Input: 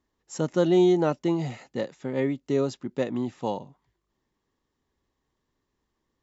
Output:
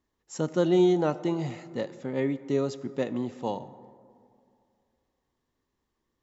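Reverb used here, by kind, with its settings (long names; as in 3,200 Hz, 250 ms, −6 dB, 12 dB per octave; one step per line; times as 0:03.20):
dense smooth reverb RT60 2.4 s, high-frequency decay 0.4×, DRR 14 dB
level −2 dB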